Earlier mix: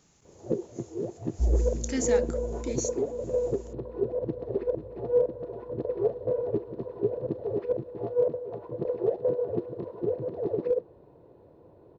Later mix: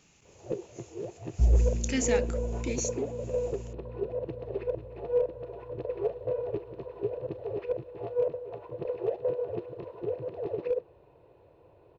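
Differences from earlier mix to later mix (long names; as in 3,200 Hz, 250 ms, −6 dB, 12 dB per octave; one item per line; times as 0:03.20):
first sound: add parametric band 230 Hz −12 dB 1.3 octaves
second sound: remove phaser with its sweep stopped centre 500 Hz, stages 6
master: add parametric band 2,600 Hz +11 dB 0.54 octaves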